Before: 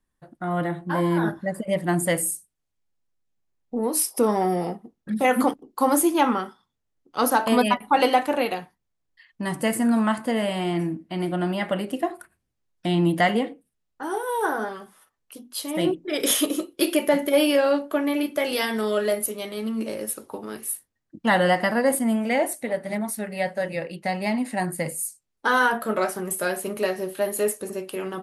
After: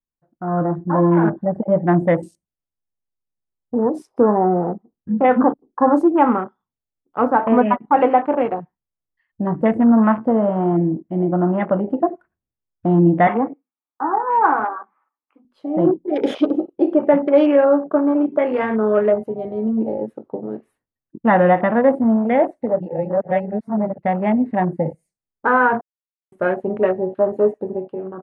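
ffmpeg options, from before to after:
-filter_complex "[0:a]asettb=1/sr,asplit=3[s0][s1][s2];[s0]atrim=end=13.274[s3];[s1]atrim=start=13.27:end=15.45,asetpts=PTS-STARTPTS,afade=t=in:d=0.004:c=qsin,afade=t=out:st=2.176:d=0.004:c=qsin,highpass=f=260:w=0.5412,highpass=f=260:w=1.3066,equalizer=f=280:t=q:w=4:g=4,equalizer=f=410:t=q:w=4:g=-8,equalizer=f=590:t=q:w=4:g=-6,equalizer=f=860:t=q:w=4:g=8,equalizer=f=1200:t=q:w=4:g=10,equalizer=f=2300:t=q:w=4:g=10,lowpass=f=2500:w=0.5412,lowpass=f=2500:w=1.3066[s4];[s2]atrim=start=15.446[s5];[s3][s4]acrossfade=d=0.004:c1=hsin:c2=qsin[s6];[s6][s5]acrossfade=d=0.004:c1=qsin:c2=hsin,asplit=5[s7][s8][s9][s10][s11];[s7]atrim=end=22.802[s12];[s8]atrim=start=22.798:end=23.982,asetpts=PTS-STARTPTS,areverse[s13];[s9]atrim=start=23.978:end=25.81,asetpts=PTS-STARTPTS,afade=t=out:st=1.828:d=0.004:c=hsin[s14];[s10]atrim=start=25.81:end=26.32,asetpts=PTS-STARTPTS,volume=0[s15];[s11]atrim=start=26.32,asetpts=PTS-STARTPTS,afade=t=in:d=0.004:c=hsin[s16];[s12][s13]acrossfade=d=0.004:c1=hsin:c2=hsin[s17];[s14][s15][s16]concat=n=3:v=0:a=1[s18];[s17][s18]acrossfade=d=0.004:c1=hsin:c2=hsin,afwtdn=0.0316,lowpass=1300,dynaudnorm=f=110:g=9:m=2.51"

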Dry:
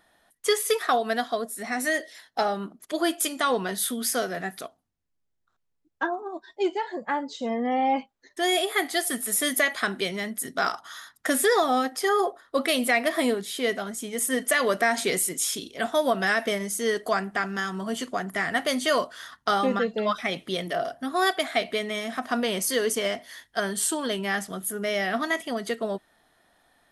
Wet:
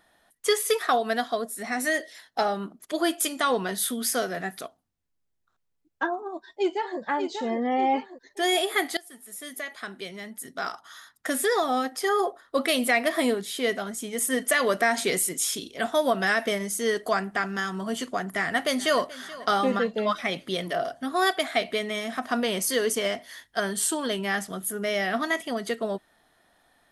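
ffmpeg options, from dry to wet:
-filter_complex "[0:a]asplit=2[s0][s1];[s1]afade=t=in:st=6.19:d=0.01,afade=t=out:st=7:d=0.01,aecho=0:1:590|1180|1770|2360|2950|3540:0.473151|0.236576|0.118288|0.0591439|0.029572|0.014786[s2];[s0][s2]amix=inputs=2:normalize=0,asplit=2[s3][s4];[s4]afade=t=in:st=18.35:d=0.01,afade=t=out:st=19.18:d=0.01,aecho=0:1:430|860|1290|1720|2150:0.125893|0.0692409|0.0380825|0.0209454|0.01152[s5];[s3][s5]amix=inputs=2:normalize=0,asplit=2[s6][s7];[s6]atrim=end=8.97,asetpts=PTS-STARTPTS,afade=t=out:st=8.966:d=0.004:c=hsin:silence=0.0794328[s8];[s7]atrim=start=8.97,asetpts=PTS-STARTPTS,afade=t=in:d=3.65:silence=0.0794328[s9];[s8][s9]concat=n=2:v=0:a=1"

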